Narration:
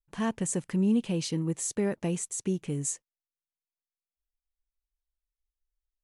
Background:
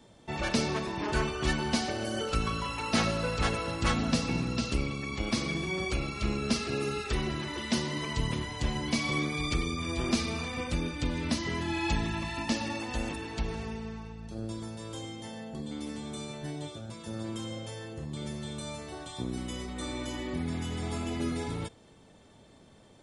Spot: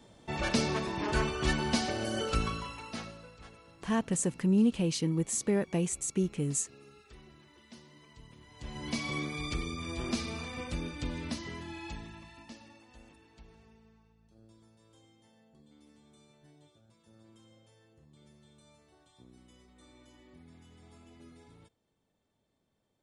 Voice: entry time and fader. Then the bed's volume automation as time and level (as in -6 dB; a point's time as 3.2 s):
3.70 s, 0.0 dB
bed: 2.4 s -0.5 dB
3.39 s -23.5 dB
8.36 s -23.5 dB
8.88 s -5 dB
11.14 s -5 dB
12.82 s -22.5 dB